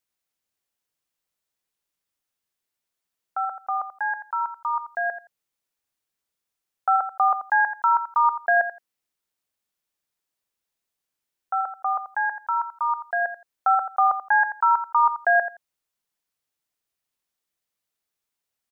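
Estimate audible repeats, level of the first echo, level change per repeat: 2, −11.0 dB, −16.0 dB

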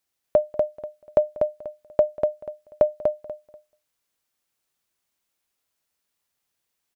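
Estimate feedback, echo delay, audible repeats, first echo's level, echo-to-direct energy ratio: 22%, 243 ms, 3, −4.0 dB, −4.0 dB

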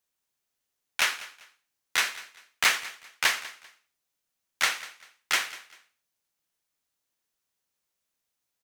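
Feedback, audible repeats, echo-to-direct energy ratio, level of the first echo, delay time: 28%, 2, −17.5 dB, −18.0 dB, 196 ms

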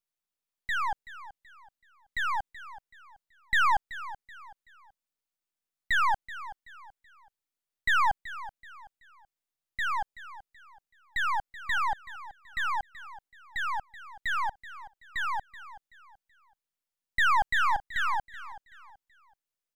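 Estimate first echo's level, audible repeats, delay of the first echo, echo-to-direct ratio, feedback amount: −15.5 dB, 3, 379 ms, −15.0 dB, 34%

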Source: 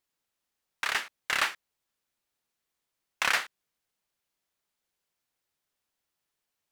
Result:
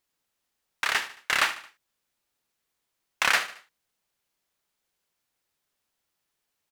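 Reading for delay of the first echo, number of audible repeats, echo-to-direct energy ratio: 74 ms, 3, −14.0 dB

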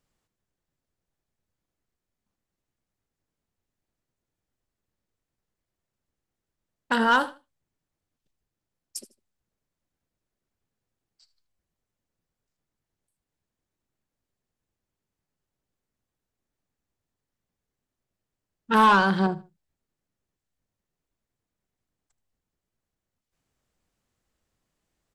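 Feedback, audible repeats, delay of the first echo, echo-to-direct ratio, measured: 25%, 2, 77 ms, −19.0 dB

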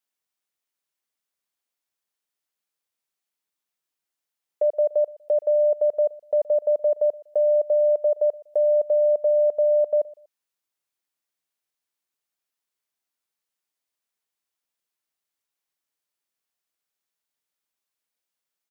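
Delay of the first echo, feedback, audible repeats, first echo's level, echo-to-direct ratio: 121 ms, 30%, 2, −22.0 dB, −21.5 dB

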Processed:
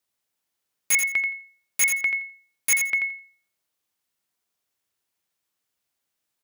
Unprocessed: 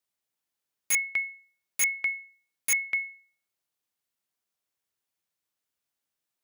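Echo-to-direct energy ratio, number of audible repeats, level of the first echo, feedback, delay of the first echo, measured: −7.0 dB, 2, −7.0 dB, 18%, 85 ms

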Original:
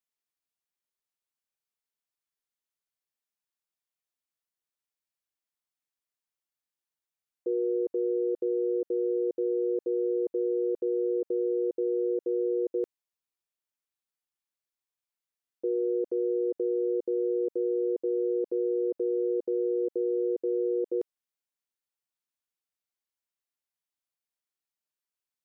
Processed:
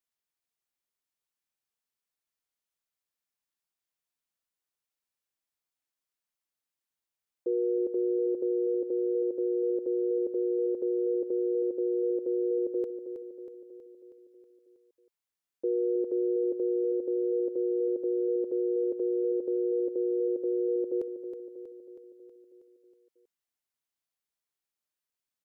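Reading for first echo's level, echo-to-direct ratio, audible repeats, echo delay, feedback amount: −9.0 dB, −7.0 dB, 6, 320 ms, 58%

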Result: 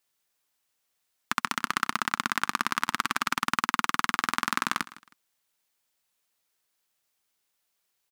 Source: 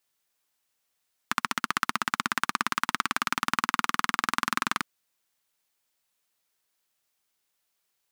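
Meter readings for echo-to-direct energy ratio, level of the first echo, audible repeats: −18.5 dB, −19.0 dB, 2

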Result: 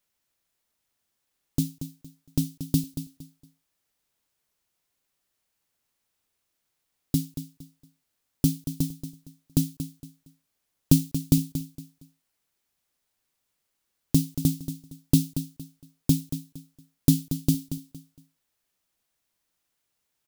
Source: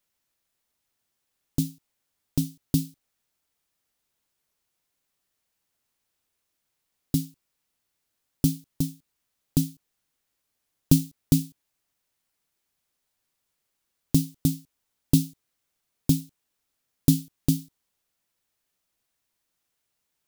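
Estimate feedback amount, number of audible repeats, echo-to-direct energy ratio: 28%, 3, −10.5 dB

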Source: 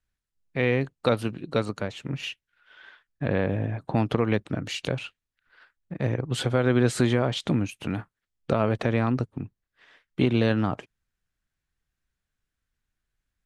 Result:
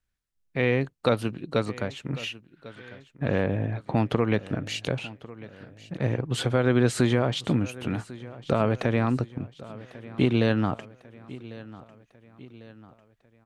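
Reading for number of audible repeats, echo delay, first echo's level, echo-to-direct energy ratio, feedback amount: 3, 1,098 ms, −18.5 dB, −17.5 dB, 49%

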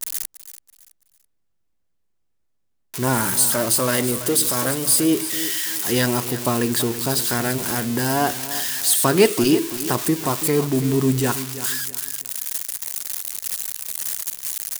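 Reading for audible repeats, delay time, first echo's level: 3, 331 ms, −13.5 dB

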